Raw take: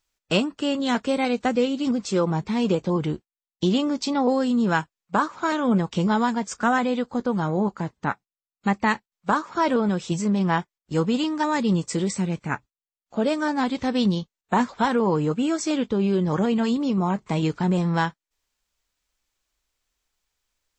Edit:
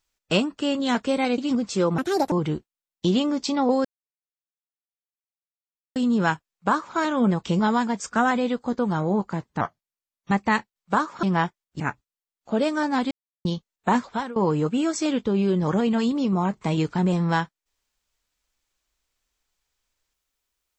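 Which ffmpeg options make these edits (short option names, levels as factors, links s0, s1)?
-filter_complex "[0:a]asplit=12[s0][s1][s2][s3][s4][s5][s6][s7][s8][s9][s10][s11];[s0]atrim=end=1.382[s12];[s1]atrim=start=1.738:end=2.344[s13];[s2]atrim=start=2.34:end=2.9,asetpts=PTS-STARTPTS,asetrate=73206,aresample=44100,atrim=end_sample=14877,asetpts=PTS-STARTPTS[s14];[s3]atrim=start=2.896:end=4.43,asetpts=PTS-STARTPTS,afade=t=out:st=1.53:d=0.004:c=hsin,apad=pad_dur=2.11[s15];[s4]atrim=start=4.43:end=8.084,asetpts=PTS-STARTPTS,afade=t=in:d=0.004:c=hsin[s16];[s5]atrim=start=8.08:end=8.67,asetpts=PTS-STARTPTS,asetrate=37044,aresample=44100[s17];[s6]atrim=start=8.666:end=9.592[s18];[s7]atrim=start=10.368:end=10.942[s19];[s8]atrim=start=12.448:end=13.76,asetpts=PTS-STARTPTS,afade=t=out:st=1.308:d=0.004:c=hsin[s20];[s9]atrim=start=13.76:end=14.1,asetpts=PTS-STARTPTS,volume=0[s21];[s10]atrim=start=14.1:end=15.01,asetpts=PTS-STARTPTS,afade=t=in:d=0.004:c=hsin,afade=t=out:st=0.54:d=0.37:silence=0.0944061[s22];[s11]atrim=start=15.01,asetpts=PTS-STARTPTS,afade=t=in:d=0.004:c=hsin:silence=0.0944061[s23];[s12][s13]acrossfade=d=0.004:c1=hsin:c2=hsin[s24];[s24][s14]acrossfade=d=0.004:c1=hsin:c2=hsin[s25];[s15][s16]concat=n=2:v=0:a=1[s26];[s25][s26]acrossfade=d=0.004:c1=hsin:c2=hsin[s27];[s27][s17]acrossfade=d=0.004:c1=hsin:c2=hsin[s28];[s28][s18]acrossfade=d=0.004:c1=hsin:c2=hsin[s29];[s29][s19]acrossfade=d=0.004:c1=hsin:c2=hsin[s30];[s20][s21][s22][s23]concat=n=4:v=0:a=1[s31];[s30][s31]acrossfade=d=0.004:c1=hsin:c2=hsin"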